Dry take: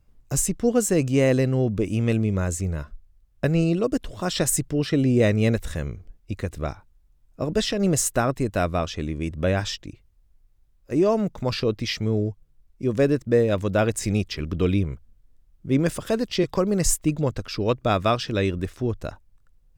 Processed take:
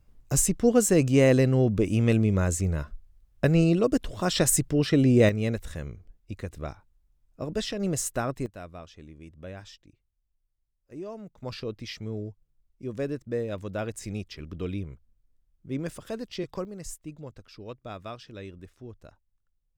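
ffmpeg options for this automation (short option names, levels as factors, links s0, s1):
-af "asetnsamples=n=441:p=0,asendcmd='5.29 volume volume -7dB;8.46 volume volume -18.5dB;11.43 volume volume -11dB;16.65 volume volume -18dB',volume=1"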